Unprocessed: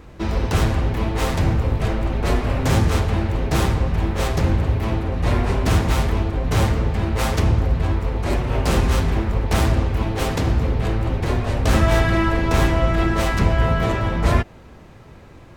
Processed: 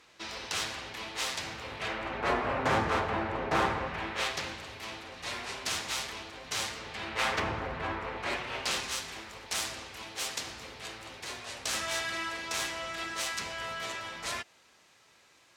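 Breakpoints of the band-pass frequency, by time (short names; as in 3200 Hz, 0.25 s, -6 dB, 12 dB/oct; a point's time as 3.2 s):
band-pass, Q 0.81
1.5 s 4900 Hz
2.36 s 1200 Hz
3.69 s 1200 Hz
4.62 s 5400 Hz
6.78 s 5400 Hz
7.43 s 1600 Hz
8.02 s 1600 Hz
8.99 s 6500 Hz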